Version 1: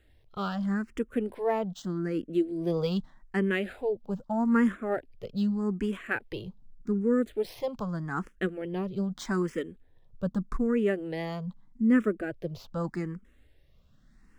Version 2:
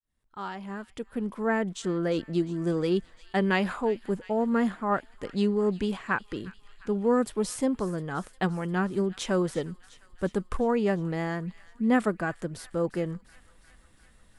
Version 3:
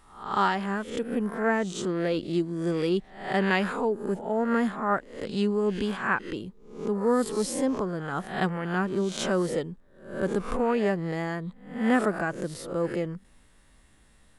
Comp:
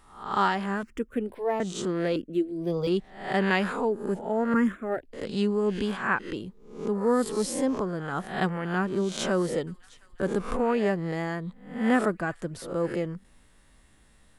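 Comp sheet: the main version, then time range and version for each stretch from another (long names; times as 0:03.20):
3
0:00.83–0:01.60: punch in from 1
0:02.16–0:02.87: punch in from 1
0:04.54–0:05.13: punch in from 1
0:09.67–0:10.20: punch in from 2
0:12.10–0:12.62: punch in from 2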